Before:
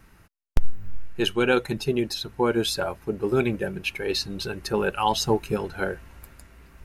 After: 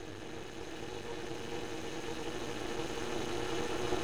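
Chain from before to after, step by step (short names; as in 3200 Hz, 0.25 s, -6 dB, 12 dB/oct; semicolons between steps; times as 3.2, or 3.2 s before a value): in parallel at +2 dB: limiter -15 dBFS, peak gain reduction 8 dB; on the sum: plain phase-vocoder stretch 0.59×; speaker cabinet 100–9800 Hz, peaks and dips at 580 Hz +7 dB, 830 Hz +8 dB, 1200 Hz +9 dB, 2900 Hz -9 dB, 6300 Hz +4 dB; Paulstretch 42×, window 0.50 s, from 0.57; half-wave rectifier; gain -4 dB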